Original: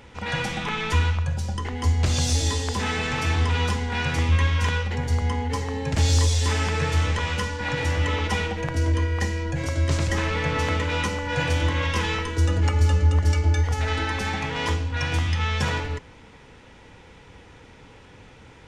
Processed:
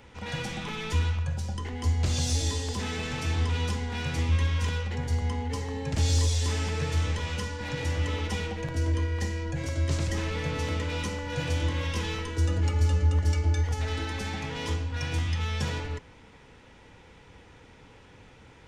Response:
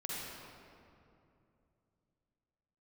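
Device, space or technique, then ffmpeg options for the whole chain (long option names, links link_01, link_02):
one-band saturation: -filter_complex "[0:a]acrossover=split=590|2800[link_01][link_02][link_03];[link_02]asoftclip=type=tanh:threshold=-34.5dB[link_04];[link_01][link_04][link_03]amix=inputs=3:normalize=0,volume=-4.5dB"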